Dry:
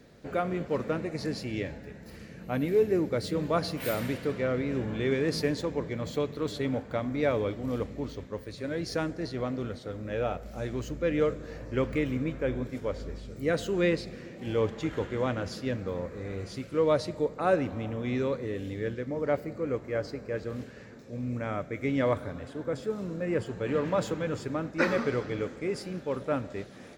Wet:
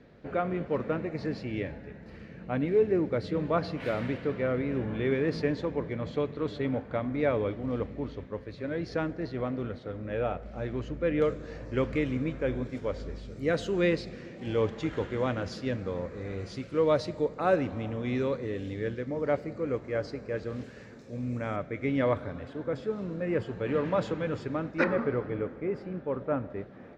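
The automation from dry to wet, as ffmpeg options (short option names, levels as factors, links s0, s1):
-af "asetnsamples=n=441:p=0,asendcmd='11.22 lowpass f 6200;20.64 lowpass f 10000;21.56 lowpass f 3900;24.84 lowpass f 1600',lowpass=2900"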